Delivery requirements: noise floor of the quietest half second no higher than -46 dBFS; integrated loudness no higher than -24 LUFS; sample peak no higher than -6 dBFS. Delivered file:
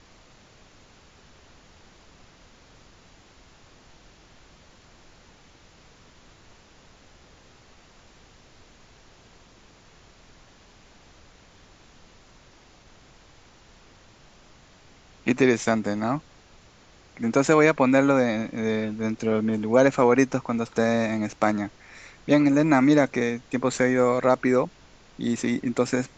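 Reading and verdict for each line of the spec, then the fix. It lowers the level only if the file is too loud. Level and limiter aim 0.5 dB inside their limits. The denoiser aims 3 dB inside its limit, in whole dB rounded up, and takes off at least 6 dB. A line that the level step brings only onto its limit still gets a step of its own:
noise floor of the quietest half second -53 dBFS: pass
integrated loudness -22.5 LUFS: fail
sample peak -4.5 dBFS: fail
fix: trim -2 dB

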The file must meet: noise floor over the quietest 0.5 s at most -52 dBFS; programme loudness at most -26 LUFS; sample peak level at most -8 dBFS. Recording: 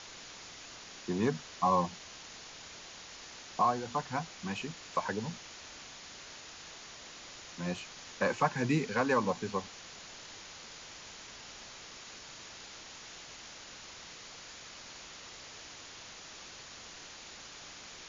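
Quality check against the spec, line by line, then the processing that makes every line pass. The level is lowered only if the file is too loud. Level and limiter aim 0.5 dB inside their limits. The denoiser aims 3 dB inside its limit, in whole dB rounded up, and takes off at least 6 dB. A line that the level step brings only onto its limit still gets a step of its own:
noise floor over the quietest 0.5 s -49 dBFS: fail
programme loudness -38.0 LUFS: pass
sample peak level -16.0 dBFS: pass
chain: noise reduction 6 dB, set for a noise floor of -49 dBFS

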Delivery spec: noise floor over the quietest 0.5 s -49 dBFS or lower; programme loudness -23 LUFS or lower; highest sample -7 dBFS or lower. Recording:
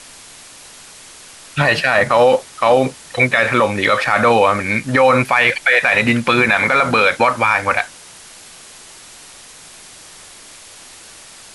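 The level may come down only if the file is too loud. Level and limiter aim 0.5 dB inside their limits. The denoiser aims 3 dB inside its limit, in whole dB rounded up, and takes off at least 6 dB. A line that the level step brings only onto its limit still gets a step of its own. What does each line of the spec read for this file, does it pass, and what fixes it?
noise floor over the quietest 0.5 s -40 dBFS: fail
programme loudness -14.0 LUFS: fail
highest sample -3.0 dBFS: fail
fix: trim -9.5 dB

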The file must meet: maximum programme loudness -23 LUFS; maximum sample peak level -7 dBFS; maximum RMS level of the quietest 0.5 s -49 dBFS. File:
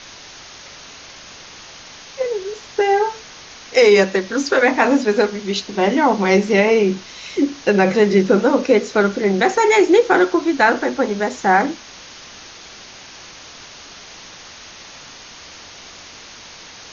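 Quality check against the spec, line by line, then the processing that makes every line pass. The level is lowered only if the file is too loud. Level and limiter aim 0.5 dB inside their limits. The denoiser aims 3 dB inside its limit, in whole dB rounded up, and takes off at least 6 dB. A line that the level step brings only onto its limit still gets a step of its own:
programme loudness -16.5 LUFS: fail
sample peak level -3.0 dBFS: fail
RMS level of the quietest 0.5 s -39 dBFS: fail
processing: noise reduction 6 dB, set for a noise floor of -39 dBFS; trim -7 dB

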